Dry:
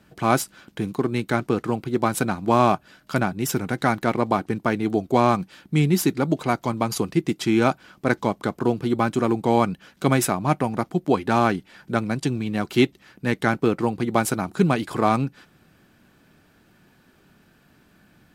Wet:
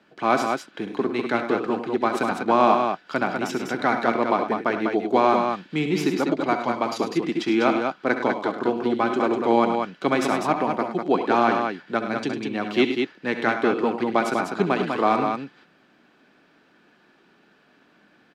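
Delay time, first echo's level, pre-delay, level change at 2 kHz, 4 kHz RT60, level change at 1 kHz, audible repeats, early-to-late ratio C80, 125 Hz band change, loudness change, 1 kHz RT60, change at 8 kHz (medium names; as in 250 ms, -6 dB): 65 ms, -11.5 dB, no reverb, +1.5 dB, no reverb, +2.0 dB, 3, no reverb, -11.0 dB, 0.0 dB, no reverb, -10.0 dB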